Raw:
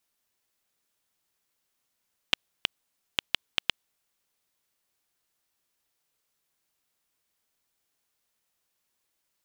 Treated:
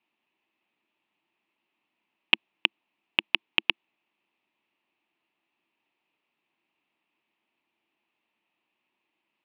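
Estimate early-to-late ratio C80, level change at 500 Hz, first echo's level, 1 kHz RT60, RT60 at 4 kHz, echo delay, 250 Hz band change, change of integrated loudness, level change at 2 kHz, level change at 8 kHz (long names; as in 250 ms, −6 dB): no reverb audible, +3.0 dB, no echo audible, no reverb audible, no reverb audible, no echo audible, +8.0 dB, +5.5 dB, +8.5 dB, below −20 dB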